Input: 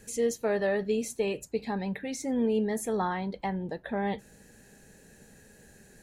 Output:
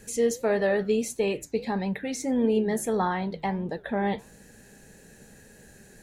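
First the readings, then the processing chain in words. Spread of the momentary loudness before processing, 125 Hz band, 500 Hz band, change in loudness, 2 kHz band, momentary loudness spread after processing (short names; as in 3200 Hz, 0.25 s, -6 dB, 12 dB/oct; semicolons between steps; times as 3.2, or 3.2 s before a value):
7 LU, +3.5 dB, +3.5 dB, +3.5 dB, +3.5 dB, 7 LU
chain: flange 1.6 Hz, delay 5 ms, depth 5.1 ms, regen -86%; gain +8 dB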